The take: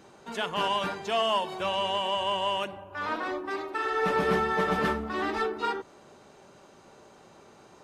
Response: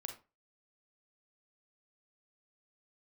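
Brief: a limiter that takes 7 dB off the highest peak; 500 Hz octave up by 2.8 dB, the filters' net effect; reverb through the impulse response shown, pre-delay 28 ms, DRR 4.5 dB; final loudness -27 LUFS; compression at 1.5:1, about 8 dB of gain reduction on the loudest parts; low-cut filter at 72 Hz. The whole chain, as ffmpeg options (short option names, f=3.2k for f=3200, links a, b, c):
-filter_complex "[0:a]highpass=72,equalizer=f=500:t=o:g=3.5,acompressor=threshold=-43dB:ratio=1.5,alimiter=level_in=4dB:limit=-24dB:level=0:latency=1,volume=-4dB,asplit=2[a][b];[1:a]atrim=start_sample=2205,adelay=28[c];[b][c]afir=irnorm=-1:irlink=0,volume=-2dB[d];[a][d]amix=inputs=2:normalize=0,volume=9dB"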